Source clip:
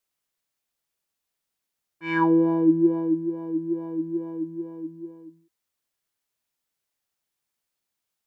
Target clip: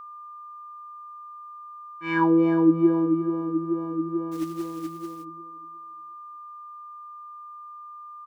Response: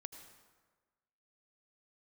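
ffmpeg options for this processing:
-filter_complex "[0:a]aecho=1:1:358|716|1074:0.251|0.0653|0.017,aeval=exprs='val(0)+0.0112*sin(2*PI*1200*n/s)':c=same,asplit=3[a][b][c];[a]afade=t=out:st=4.31:d=0.02[d];[b]acrusher=bits=4:mode=log:mix=0:aa=0.000001,afade=t=in:st=4.31:d=0.02,afade=t=out:st=5.23:d=0.02[e];[c]afade=t=in:st=5.23:d=0.02[f];[d][e][f]amix=inputs=3:normalize=0"

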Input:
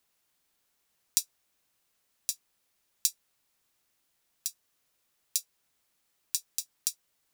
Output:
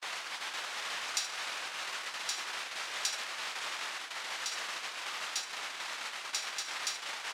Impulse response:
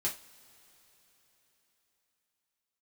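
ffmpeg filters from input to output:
-af "aeval=exprs='val(0)+0.5*0.0841*sgn(val(0))':c=same,adynamicsmooth=sensitivity=6:basefreq=3.3k,aemphasis=mode=reproduction:type=bsi,aecho=1:1:75:0.316,agate=range=-42dB:threshold=-32dB:ratio=16:detection=peak,highpass=970"

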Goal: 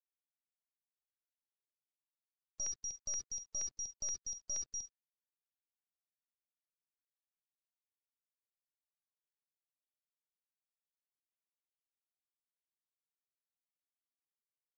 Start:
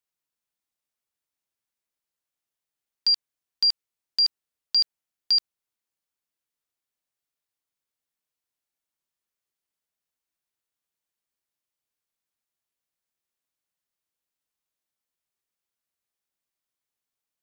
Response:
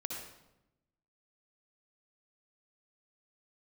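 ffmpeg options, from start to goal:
-filter_complex "[0:a]aecho=1:1:287:0.075,afreqshift=84,acontrast=89,aemphasis=mode=reproduction:type=75kf,asplit=2[a][b];[1:a]atrim=start_sample=2205,atrim=end_sample=3969,highshelf=f=3.1k:g=7.5[c];[b][c]afir=irnorm=-1:irlink=0,volume=-11dB[d];[a][d]amix=inputs=2:normalize=0,acompressor=threshold=-23dB:ratio=8,aeval=exprs='(tanh(112*val(0)+0.5)-tanh(0.5))/112':c=same,afftdn=nr=13:nf=-66,aresample=11025,aresample=44100,asetrate=52038,aresample=44100,afftfilt=real='re*gte(hypot(re,im),0.000562)':imag='im*gte(hypot(re,im),0.000562)':win_size=1024:overlap=0.75,volume=4.5dB" -ar 16000 -c:a pcm_mulaw

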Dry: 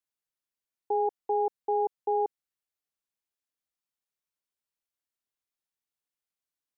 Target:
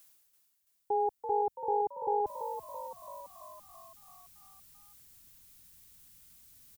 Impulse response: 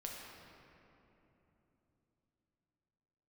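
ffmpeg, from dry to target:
-filter_complex "[0:a]asubboost=boost=11.5:cutoff=150,areverse,acompressor=mode=upward:threshold=-48dB:ratio=2.5,areverse,asplit=9[a][b][c][d][e][f][g][h][i];[b]adelay=334,afreqshift=50,volume=-9dB[j];[c]adelay=668,afreqshift=100,volume=-13.3dB[k];[d]adelay=1002,afreqshift=150,volume=-17.6dB[l];[e]adelay=1336,afreqshift=200,volume=-21.9dB[m];[f]adelay=1670,afreqshift=250,volume=-26.2dB[n];[g]adelay=2004,afreqshift=300,volume=-30.5dB[o];[h]adelay=2338,afreqshift=350,volume=-34.8dB[p];[i]adelay=2672,afreqshift=400,volume=-39.1dB[q];[a][j][k][l][m][n][o][p][q]amix=inputs=9:normalize=0,crystalizer=i=2:c=0,volume=-1dB"

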